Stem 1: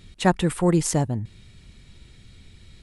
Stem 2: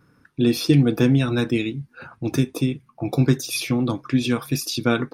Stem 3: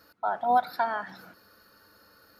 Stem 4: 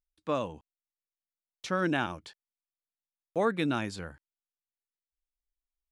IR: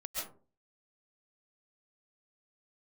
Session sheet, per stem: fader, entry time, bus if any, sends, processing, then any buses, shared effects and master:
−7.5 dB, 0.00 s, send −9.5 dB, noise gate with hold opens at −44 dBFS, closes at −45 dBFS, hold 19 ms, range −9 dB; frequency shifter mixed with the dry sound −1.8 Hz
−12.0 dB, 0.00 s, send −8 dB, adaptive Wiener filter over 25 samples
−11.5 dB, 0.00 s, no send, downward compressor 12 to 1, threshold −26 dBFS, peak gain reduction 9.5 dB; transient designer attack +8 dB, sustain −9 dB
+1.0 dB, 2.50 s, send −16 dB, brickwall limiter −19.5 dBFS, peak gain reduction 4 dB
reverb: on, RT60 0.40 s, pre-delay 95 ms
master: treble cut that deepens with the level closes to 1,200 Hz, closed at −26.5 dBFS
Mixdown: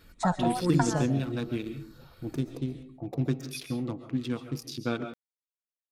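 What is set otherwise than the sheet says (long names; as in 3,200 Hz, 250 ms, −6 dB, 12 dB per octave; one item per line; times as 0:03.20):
stem 3 −11.5 dB → −5.0 dB
stem 4: muted
master: missing treble cut that deepens with the level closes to 1,200 Hz, closed at −26.5 dBFS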